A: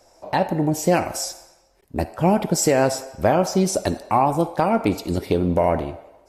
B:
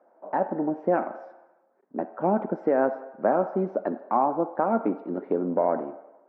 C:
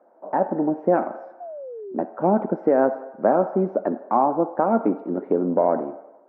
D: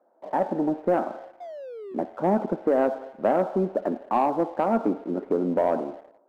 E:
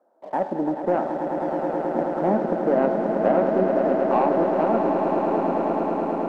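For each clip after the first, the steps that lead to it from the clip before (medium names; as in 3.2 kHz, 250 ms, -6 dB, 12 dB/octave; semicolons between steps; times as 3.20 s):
elliptic band-pass 220–1500 Hz, stop band 70 dB; trim -4 dB
treble shelf 2 kHz -10 dB; painted sound fall, 1.40–1.95 s, 360–730 Hz -40 dBFS; trim +5 dB
waveshaping leveller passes 1; trim -6 dB
fade out at the end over 2.09 s; echo with a slow build-up 107 ms, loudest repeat 8, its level -8.5 dB; low-pass that closes with the level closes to 3 kHz, closed at -11.5 dBFS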